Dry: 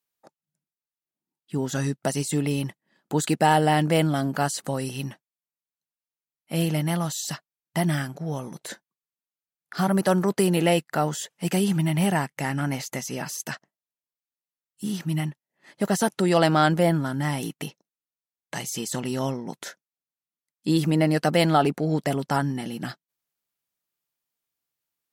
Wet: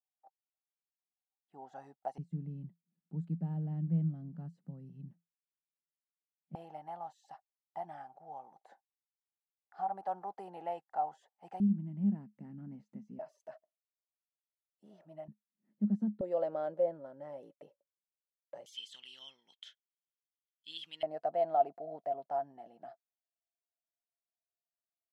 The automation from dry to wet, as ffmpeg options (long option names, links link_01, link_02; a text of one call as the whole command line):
ffmpeg -i in.wav -af "asetnsamples=nb_out_samples=441:pad=0,asendcmd='2.18 bandpass f 170;6.55 bandpass f 790;11.6 bandpass f 210;13.19 bandpass f 630;15.28 bandpass f 210;16.21 bandpass f 560;18.66 bandpass f 3200;21.03 bandpass f 680',bandpass=frequency=770:width_type=q:width=14:csg=0" out.wav